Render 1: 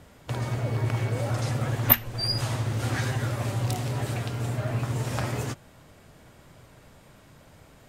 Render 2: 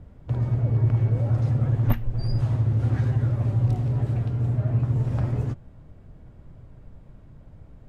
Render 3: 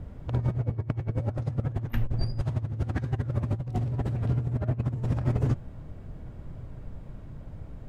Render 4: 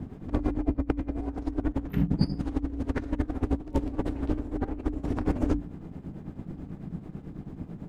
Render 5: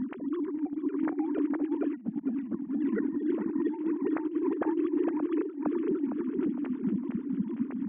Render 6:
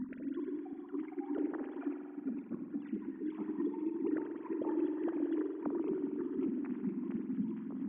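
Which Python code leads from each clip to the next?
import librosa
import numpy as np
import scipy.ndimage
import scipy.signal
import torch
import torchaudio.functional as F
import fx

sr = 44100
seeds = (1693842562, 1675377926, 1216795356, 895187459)

y1 = fx.tilt_eq(x, sr, slope=-4.5)
y1 = y1 * librosa.db_to_amplitude(-7.5)
y2 = fx.over_compress(y1, sr, threshold_db=-27.0, ratio=-0.5)
y3 = fx.tremolo_shape(y2, sr, shape='triangle', hz=9.1, depth_pct=75)
y3 = fx.hum_notches(y3, sr, base_hz=60, count=2)
y3 = y3 * np.sin(2.0 * np.pi * 170.0 * np.arange(len(y3)) / sr)
y3 = y3 * librosa.db_to_amplitude(7.0)
y4 = fx.sine_speech(y3, sr)
y4 = fx.echo_feedback(y4, sr, ms=459, feedback_pct=41, wet_db=-4.5)
y4 = fx.over_compress(y4, sr, threshold_db=-31.0, ratio=-0.5)
y4 = y4 * librosa.db_to_amplitude(2.0)
y5 = fx.spec_dropout(y4, sr, seeds[0], share_pct=31)
y5 = fx.rev_spring(y5, sr, rt60_s=2.2, pass_ms=(45,), chirp_ms=80, drr_db=3.5)
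y5 = y5 * librosa.db_to_amplitude(-7.0)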